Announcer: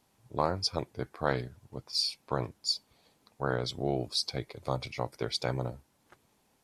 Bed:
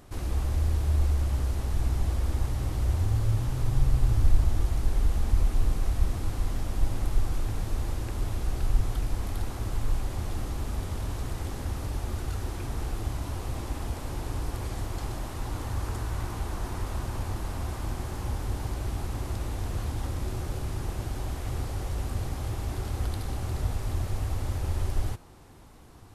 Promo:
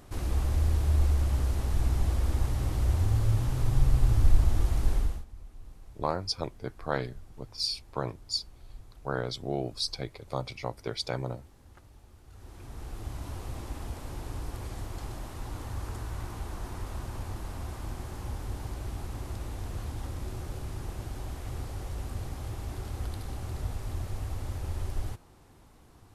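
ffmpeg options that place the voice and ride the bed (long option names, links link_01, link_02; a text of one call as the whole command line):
ffmpeg -i stem1.wav -i stem2.wav -filter_complex "[0:a]adelay=5650,volume=-1dB[link_01];[1:a]volume=18dB,afade=type=out:start_time=4.92:duration=0.33:silence=0.0707946,afade=type=in:start_time=12.25:duration=1.03:silence=0.125893[link_02];[link_01][link_02]amix=inputs=2:normalize=0" out.wav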